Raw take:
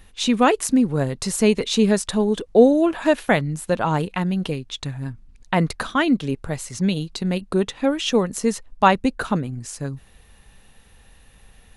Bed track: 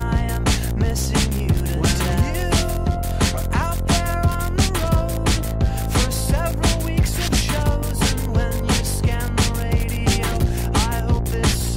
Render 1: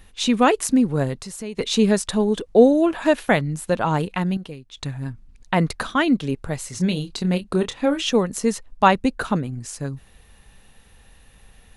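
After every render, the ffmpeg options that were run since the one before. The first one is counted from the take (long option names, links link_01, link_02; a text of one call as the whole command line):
ffmpeg -i in.wav -filter_complex "[0:a]asettb=1/sr,asplit=3[link_01][link_02][link_03];[link_01]atrim=end=1.174[link_04];[link_02]atrim=start=1.17:end=1.59,asetpts=PTS-STARTPTS,afade=type=in:duration=0.004:curve=qsin,afade=type=out:start_time=0.416:duration=0.004:curve=qsin,acompressor=threshold=-40dB:ratio=2:attack=3.2:release=140:knee=1:detection=peak[link_05];[link_03]atrim=start=1.586[link_06];[link_04][link_05]acrossfade=duration=0.004:curve1=hsin:curve2=qsin[link_07];[link_07][link_06]acrossfade=duration=0.004:curve1=qsin:curve2=hsin,asettb=1/sr,asplit=3[link_08][link_09][link_10];[link_08]atrim=end=6.614[link_11];[link_09]atrim=start=6.61:end=8.09,asetpts=PTS-STARTPTS,afade=type=in:duration=0.004:curve=qsin,afade=type=out:start_time=1.476:duration=0.004:curve=qsin,asplit=2[link_12][link_13];[link_13]adelay=28,volume=-9dB[link_14];[link_12][link_14]amix=inputs=2:normalize=0,atrim=end_sample=65268[link_15];[link_10]atrim=start=8.086[link_16];[link_11][link_15]acrossfade=duration=0.004:curve1=hsin:curve2=qsin[link_17];[link_17][link_16]acrossfade=duration=0.004:curve1=qsin:curve2=hsin,asplit=3[link_18][link_19][link_20];[link_18]atrim=end=4.372[link_21];[link_19]atrim=start=4.368:end=4.772,asetpts=PTS-STARTPTS,volume=-10dB[link_22];[link_20]atrim=start=4.768[link_23];[link_21][link_22]acrossfade=duration=0.004:curve1=hsin:curve2=hsin[link_24];[link_24][link_23]acrossfade=duration=0.004:curve1=hsin:curve2=hsin" out.wav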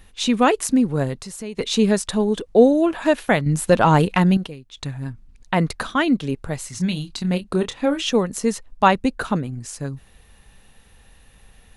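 ffmpeg -i in.wav -filter_complex "[0:a]asettb=1/sr,asplit=3[link_01][link_02][link_03];[link_01]atrim=end=3.464[link_04];[link_02]atrim=start=3.46:end=4.47,asetpts=PTS-STARTPTS,afade=type=in:duration=0.004:curve=qsin,afade=type=out:start_time=1.006:duration=0.004:curve=qsin,acontrast=86[link_05];[link_03]atrim=start=4.466[link_06];[link_04][link_05]acrossfade=duration=0.004:curve1=hsin:curve2=qsin[link_07];[link_07][link_06]acrossfade=duration=0.004:curve1=qsin:curve2=hsin,asettb=1/sr,asplit=3[link_08][link_09][link_10];[link_08]atrim=end=6.674[link_11];[link_09]atrim=start=6.67:end=7.31,asetpts=PTS-STARTPTS,afade=type=in:duration=0.004:curve=qsin,afade=type=out:start_time=0.636:duration=0.004:curve=qsin,equalizer=frequency=460:width_type=o:width=0.71:gain=-12[link_12];[link_10]atrim=start=7.306[link_13];[link_11][link_12]acrossfade=duration=0.004:curve1=hsin:curve2=qsin[link_14];[link_14][link_13]acrossfade=duration=0.004:curve1=qsin:curve2=hsin" out.wav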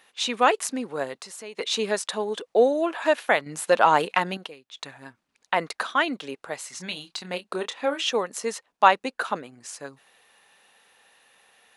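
ffmpeg -i in.wav -af "highpass=570,highshelf=frequency=6800:gain=-7" out.wav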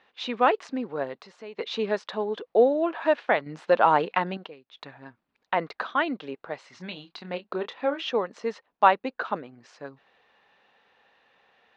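ffmpeg -i in.wav -af "lowpass=frequency=4800:width=0.5412,lowpass=frequency=4800:width=1.3066,highshelf=frequency=2300:gain=-10" out.wav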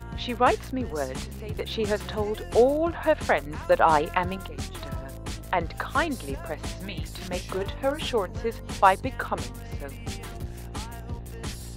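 ffmpeg -i in.wav -i bed.wav -filter_complex "[1:a]volume=-16.5dB[link_01];[0:a][link_01]amix=inputs=2:normalize=0" out.wav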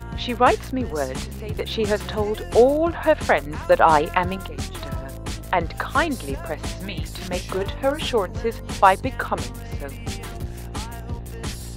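ffmpeg -i in.wav -af "volume=4.5dB,alimiter=limit=-1dB:level=0:latency=1" out.wav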